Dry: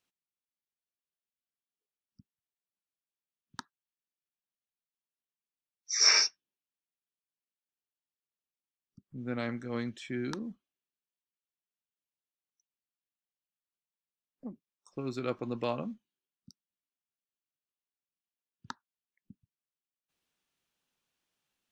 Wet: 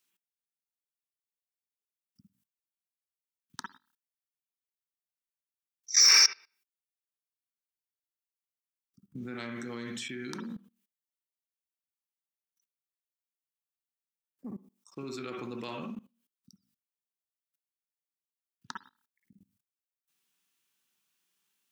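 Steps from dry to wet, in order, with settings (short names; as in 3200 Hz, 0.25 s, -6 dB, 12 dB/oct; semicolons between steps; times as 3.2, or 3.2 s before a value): in parallel at +1.5 dB: limiter -20 dBFS, peak gain reduction 9 dB; on the sum: HPF 210 Hz 6 dB/oct; high shelf 6100 Hz +11 dB; on a send at -3 dB: reverb, pre-delay 51 ms; on the sum: soft clip -8 dBFS, distortion -18 dB; bell 600 Hz -9 dB 0.8 oct; level quantiser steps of 20 dB; gain +1 dB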